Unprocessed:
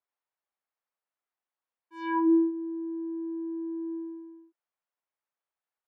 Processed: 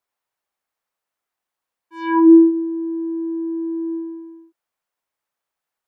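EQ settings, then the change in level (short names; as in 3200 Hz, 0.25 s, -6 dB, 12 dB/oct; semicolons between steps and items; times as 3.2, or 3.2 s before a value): dynamic EQ 340 Hz, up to +5 dB, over -34 dBFS; +8.5 dB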